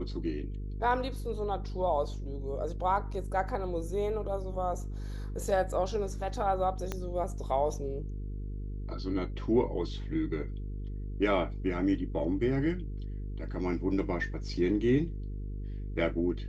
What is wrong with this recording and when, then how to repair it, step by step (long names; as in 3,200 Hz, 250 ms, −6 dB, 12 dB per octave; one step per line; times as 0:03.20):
mains buzz 50 Hz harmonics 9 −37 dBFS
0:06.92: click −19 dBFS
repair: click removal
hum removal 50 Hz, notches 9